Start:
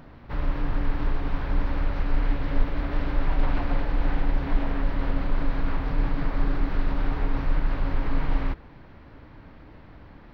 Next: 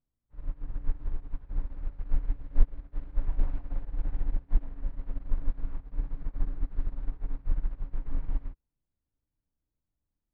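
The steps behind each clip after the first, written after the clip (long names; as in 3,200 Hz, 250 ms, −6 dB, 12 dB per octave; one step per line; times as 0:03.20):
spectral tilt −2.5 dB per octave
expander for the loud parts 2.5 to 1, over −26 dBFS
level −9 dB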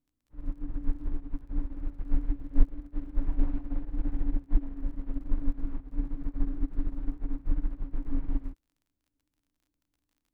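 parametric band 290 Hz +14.5 dB 0.41 octaves
surface crackle 39 per second −57 dBFS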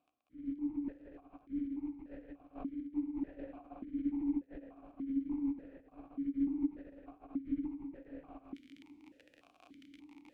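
reversed playback
upward compression, threshold −28 dBFS
reversed playback
formant filter that steps through the vowels 3.4 Hz
level +7.5 dB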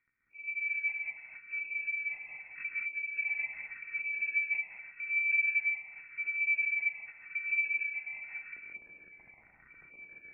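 reverb whose tail is shaped and stops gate 240 ms rising, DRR −1.5 dB
voice inversion scrambler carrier 2,600 Hz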